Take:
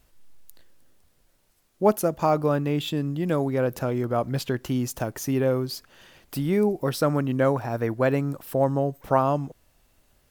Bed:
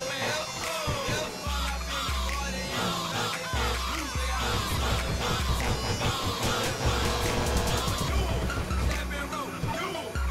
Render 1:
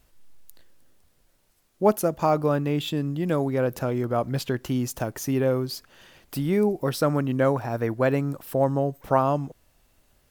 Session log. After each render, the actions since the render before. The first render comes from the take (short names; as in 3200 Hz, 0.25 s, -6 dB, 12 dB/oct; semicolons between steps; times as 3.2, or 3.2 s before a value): nothing audible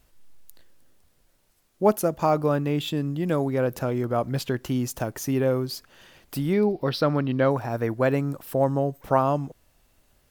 6.53–7.51 resonant high shelf 5700 Hz -9.5 dB, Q 3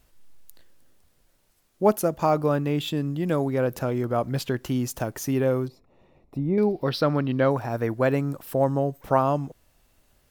5.68–6.58 running mean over 28 samples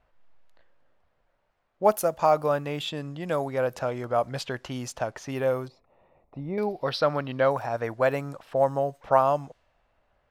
low-pass opened by the level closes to 1800 Hz, open at -19.5 dBFS; resonant low shelf 450 Hz -7.5 dB, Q 1.5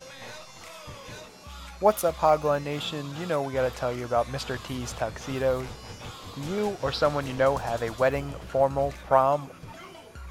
add bed -12.5 dB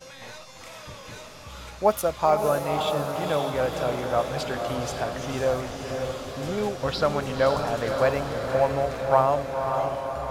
diffused feedback echo 0.533 s, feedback 62%, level -5 dB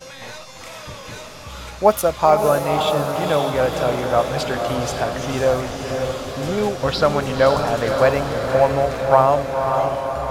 gain +6.5 dB; limiter -1 dBFS, peak gain reduction 1.5 dB